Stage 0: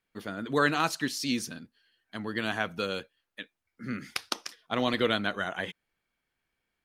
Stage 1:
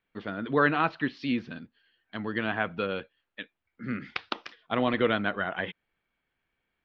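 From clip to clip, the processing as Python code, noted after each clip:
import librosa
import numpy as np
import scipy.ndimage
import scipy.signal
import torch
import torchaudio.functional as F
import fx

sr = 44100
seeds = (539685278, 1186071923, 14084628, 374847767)

y = fx.env_lowpass_down(x, sr, base_hz=2700.0, full_db=-27.5)
y = scipy.signal.sosfilt(scipy.signal.butter(4, 3600.0, 'lowpass', fs=sr, output='sos'), y)
y = F.gain(torch.from_numpy(y), 2.0).numpy()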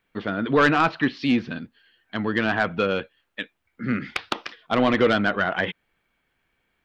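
y = 10.0 ** (-18.5 / 20.0) * np.tanh(x / 10.0 ** (-18.5 / 20.0))
y = F.gain(torch.from_numpy(y), 8.5).numpy()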